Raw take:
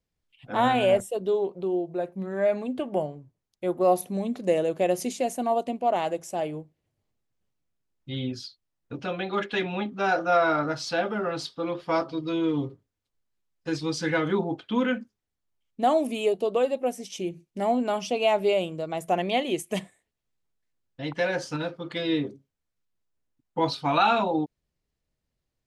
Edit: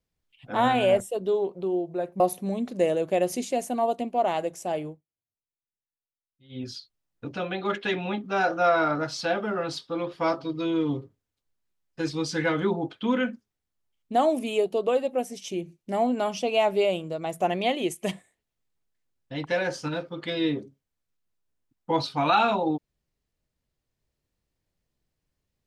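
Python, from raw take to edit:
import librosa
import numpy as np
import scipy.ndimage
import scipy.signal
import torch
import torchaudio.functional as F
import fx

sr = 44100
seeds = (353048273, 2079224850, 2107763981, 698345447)

y = fx.edit(x, sr, fx.cut(start_s=2.2, length_s=1.68),
    fx.fade_down_up(start_s=6.53, length_s=1.82, db=-23.5, fade_s=0.18), tone=tone)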